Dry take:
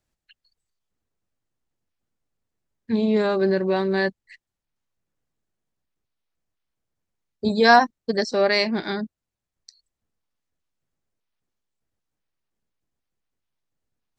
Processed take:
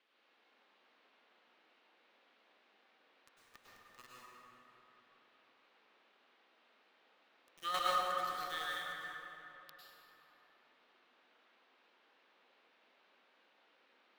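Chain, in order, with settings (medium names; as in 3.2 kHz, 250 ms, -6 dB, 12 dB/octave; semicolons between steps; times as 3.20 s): pitch bend over the whole clip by -10.5 st ending unshifted; differentiator; de-hum 53.86 Hz, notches 22; small samples zeroed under -34 dBFS; small resonant body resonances 1.2/1.8 kHz, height 15 dB; square tremolo 3.1 Hz, depth 65%, duty 15%; band noise 250–3500 Hz -74 dBFS; tape echo 198 ms, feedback 68%, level -11 dB, low-pass 4.6 kHz; plate-style reverb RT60 3.1 s, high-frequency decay 0.4×, pre-delay 90 ms, DRR -6.5 dB; trim -4.5 dB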